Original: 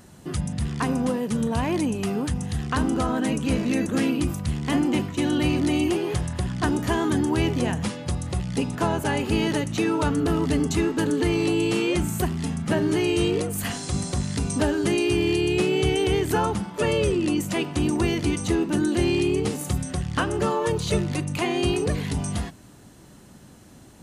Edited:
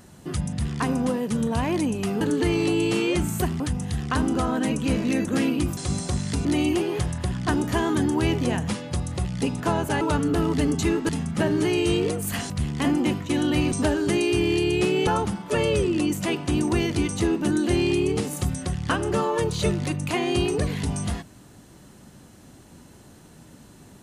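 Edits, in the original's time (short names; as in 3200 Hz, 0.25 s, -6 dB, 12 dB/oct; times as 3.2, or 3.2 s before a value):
4.38–5.6 swap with 13.81–14.49
9.16–9.93 cut
11.01–12.4 move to 2.21
15.84–16.35 cut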